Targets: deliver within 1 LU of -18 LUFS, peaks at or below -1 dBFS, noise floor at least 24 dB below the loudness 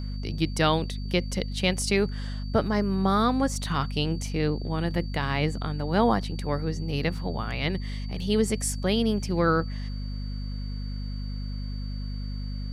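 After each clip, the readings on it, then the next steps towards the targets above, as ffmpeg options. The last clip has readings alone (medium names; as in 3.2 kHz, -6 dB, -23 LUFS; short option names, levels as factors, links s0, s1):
hum 50 Hz; highest harmonic 250 Hz; hum level -30 dBFS; steady tone 4.6 kHz; tone level -47 dBFS; loudness -27.5 LUFS; peak level -7.5 dBFS; loudness target -18.0 LUFS
-> -af "bandreject=f=50:t=h:w=4,bandreject=f=100:t=h:w=4,bandreject=f=150:t=h:w=4,bandreject=f=200:t=h:w=4,bandreject=f=250:t=h:w=4"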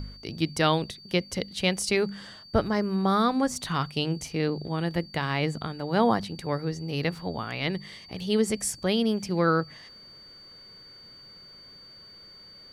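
hum not found; steady tone 4.6 kHz; tone level -47 dBFS
-> -af "bandreject=f=4600:w=30"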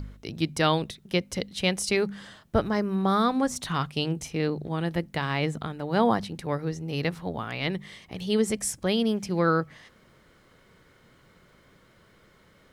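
steady tone not found; loudness -27.5 LUFS; peak level -8.5 dBFS; loudness target -18.0 LUFS
-> -af "volume=2.99,alimiter=limit=0.891:level=0:latency=1"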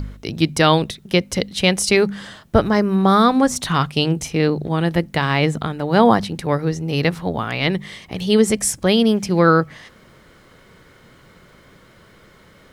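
loudness -18.0 LUFS; peak level -1.0 dBFS; noise floor -50 dBFS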